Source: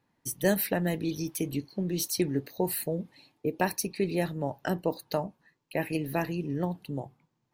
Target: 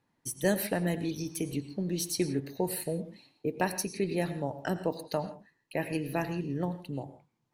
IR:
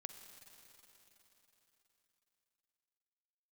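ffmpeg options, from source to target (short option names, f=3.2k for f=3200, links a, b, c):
-filter_complex "[1:a]atrim=start_sample=2205,atrim=end_sample=3969,asetrate=22491,aresample=44100[a];[0:a][a]afir=irnorm=-1:irlink=0"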